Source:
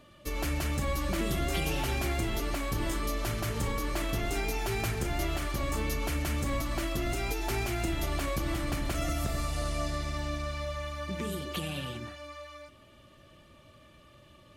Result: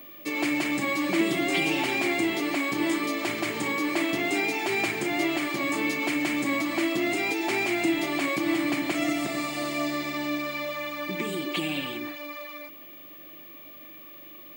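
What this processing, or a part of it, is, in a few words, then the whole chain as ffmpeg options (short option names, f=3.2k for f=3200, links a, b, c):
old television with a line whistle: -af "highpass=f=190:w=0.5412,highpass=f=190:w=1.3066,equalizer=f=220:t=q:w=4:g=-6,equalizer=f=310:t=q:w=4:g=8,equalizer=f=490:t=q:w=4:g=-7,equalizer=f=1.4k:t=q:w=4:g=-6,equalizer=f=2.2k:t=q:w=4:g=8,equalizer=f=5.9k:t=q:w=4:g=-7,lowpass=f=8.5k:w=0.5412,lowpass=f=8.5k:w=1.3066,aeval=exprs='val(0)+0.00316*sin(2*PI*15625*n/s)':c=same,volume=6dB"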